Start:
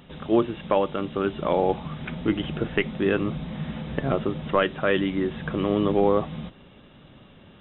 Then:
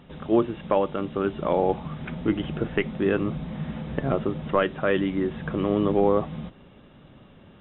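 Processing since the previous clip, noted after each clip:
high-shelf EQ 3,600 Hz −11 dB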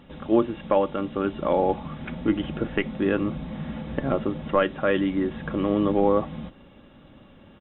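comb filter 3.6 ms, depth 31%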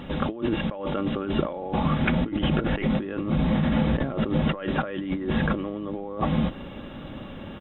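compressor whose output falls as the input rises −33 dBFS, ratio −1
level +6 dB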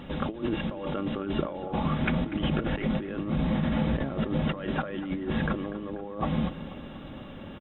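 repeating echo 243 ms, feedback 52%, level −15 dB
level −4 dB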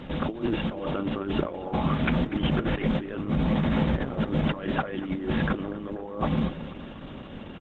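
level +2.5 dB
Opus 10 kbit/s 48,000 Hz

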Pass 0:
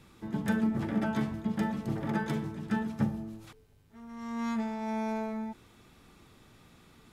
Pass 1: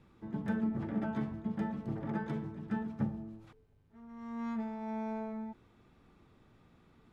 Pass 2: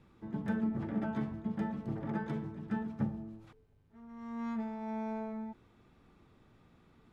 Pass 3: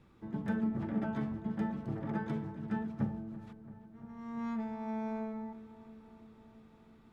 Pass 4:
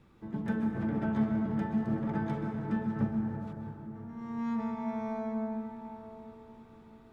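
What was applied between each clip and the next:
low-pass filter 1,400 Hz 6 dB per octave; level −4.5 dB
no processing that can be heard
feedback echo with a low-pass in the loop 336 ms, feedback 73%, low-pass 2,900 Hz, level −16 dB
convolution reverb RT60 3.4 s, pre-delay 118 ms, DRR 2 dB; level +1.5 dB

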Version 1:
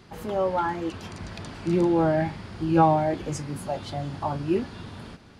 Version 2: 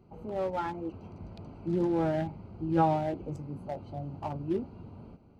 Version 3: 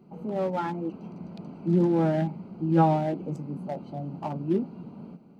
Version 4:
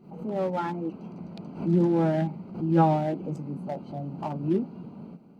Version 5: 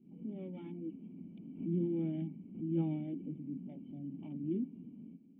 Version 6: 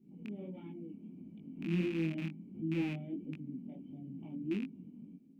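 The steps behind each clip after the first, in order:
adaptive Wiener filter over 25 samples; notch filter 1,100 Hz, Q 16; level −6 dB
low shelf with overshoot 120 Hz −13.5 dB, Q 3; level +2.5 dB
tape wow and flutter 16 cents; background raised ahead of every attack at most 130 dB per second
formant resonators in series i; level −2.5 dB
loose part that buzzes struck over −38 dBFS, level −34 dBFS; chorus effect 1.5 Hz, delay 18.5 ms, depth 6.3 ms; level +2.5 dB

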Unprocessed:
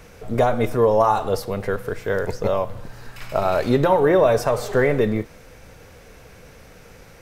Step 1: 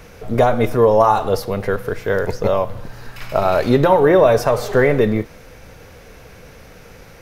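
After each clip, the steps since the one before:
parametric band 8,000 Hz −5.5 dB 0.34 octaves
level +4 dB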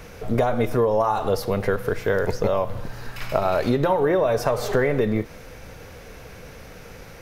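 downward compressor 6 to 1, threshold −17 dBFS, peak gain reduction 9.5 dB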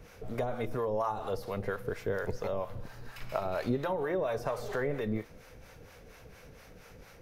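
two-band tremolo in antiphase 4.3 Hz, depth 70%, crossover 570 Hz
level −8 dB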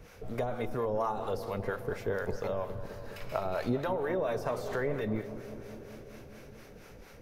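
feedback echo with a low-pass in the loop 206 ms, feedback 81%, low-pass 1,600 Hz, level −12 dB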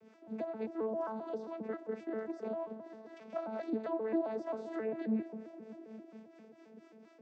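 vocoder with an arpeggio as carrier bare fifth, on A3, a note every 133 ms
level −3.5 dB

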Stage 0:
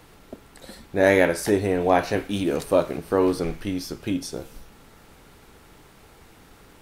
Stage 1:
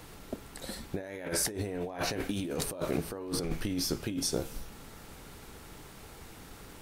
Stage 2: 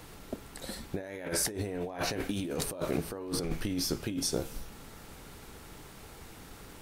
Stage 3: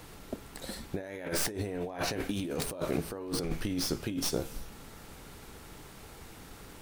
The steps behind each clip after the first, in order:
bass and treble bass +2 dB, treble +4 dB; compressor whose output falls as the input rises −29 dBFS, ratio −1; level −5.5 dB
no processing that can be heard
stylus tracing distortion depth 0.076 ms

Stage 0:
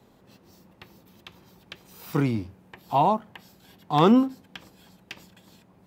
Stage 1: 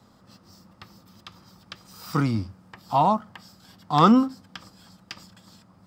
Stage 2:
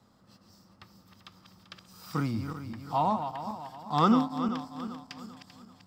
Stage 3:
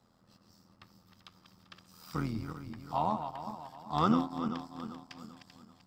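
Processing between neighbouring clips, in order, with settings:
thirty-one-band graphic EQ 100 Hz +7 dB, 200 Hz +4 dB, 400 Hz −8 dB, 1,250 Hz +10 dB, 2,500 Hz −4 dB, 5,000 Hz +11 dB, 8,000 Hz +5 dB, 12,500 Hz −5 dB
feedback delay that plays each chunk backwards 195 ms, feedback 64%, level −8 dB; level −7 dB
amplitude modulation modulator 83 Hz, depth 50%; level −1.5 dB

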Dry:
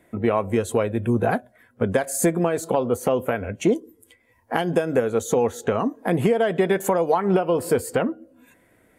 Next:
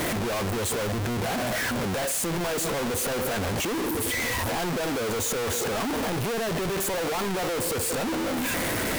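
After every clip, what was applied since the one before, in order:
sign of each sample alone
level −4.5 dB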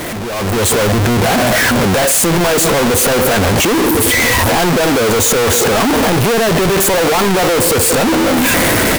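automatic gain control gain up to 11 dB
level +4.5 dB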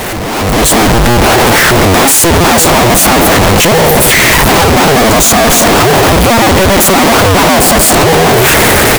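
sub-harmonics by changed cycles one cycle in 2, inverted
level +6 dB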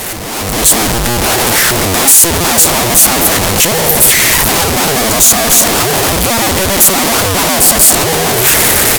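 parametric band 12,000 Hz +11.5 dB 2.3 octaves
level −7.5 dB

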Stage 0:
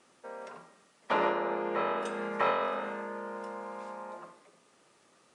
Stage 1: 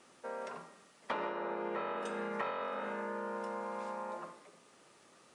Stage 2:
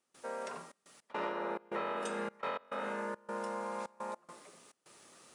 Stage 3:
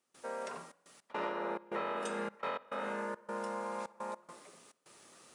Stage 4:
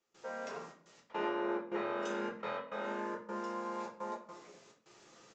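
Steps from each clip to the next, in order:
downward compressor 6 to 1, threshold −37 dBFS, peak gain reduction 13 dB; level +2 dB
high-shelf EQ 5,600 Hz +10 dB; gate pattern ".xxxx.x.xxx" 105 BPM −24 dB; level +1 dB
tape delay 61 ms, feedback 71%, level −24 dB, low-pass 4,200 Hz
rectangular room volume 37 cubic metres, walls mixed, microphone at 0.7 metres; downsampling to 16,000 Hz; level −4 dB

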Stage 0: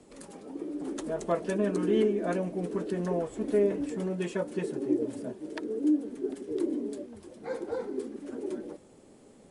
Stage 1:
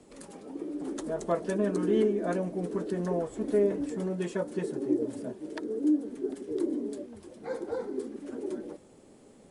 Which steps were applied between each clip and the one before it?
dynamic equaliser 2,600 Hz, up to −5 dB, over −57 dBFS, Q 2.2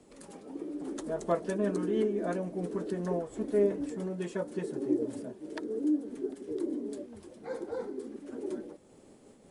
amplitude modulation by smooth noise, depth 50%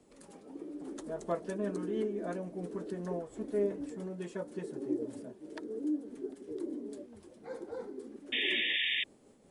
sound drawn into the spectrogram noise, 0:08.32–0:09.04, 1,700–3,700 Hz −27 dBFS
level −5 dB

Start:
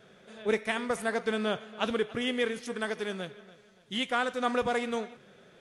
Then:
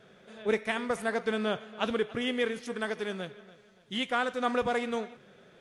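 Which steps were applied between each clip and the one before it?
high-shelf EQ 5,500 Hz −4.5 dB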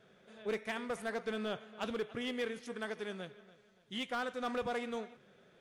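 hard clipping −23 dBFS, distortion −16 dB
level −7 dB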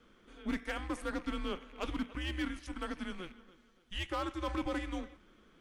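loose part that buzzes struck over −58 dBFS, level −46 dBFS
frequency shifter −180 Hz
level +1 dB

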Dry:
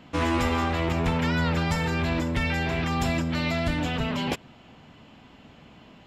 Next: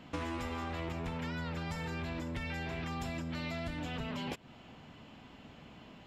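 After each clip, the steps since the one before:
downward compressor 6 to 1, threshold −33 dBFS, peak gain reduction 12 dB
level −3 dB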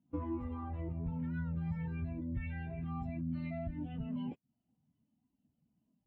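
every bin expanded away from the loudest bin 2.5 to 1
level −1.5 dB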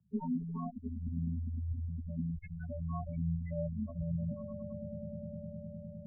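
echo that builds up and dies away 102 ms, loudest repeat 8, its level −11 dB
gate on every frequency bin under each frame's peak −10 dB strong
single-sideband voice off tune −81 Hz 160–2,100 Hz
level +5 dB

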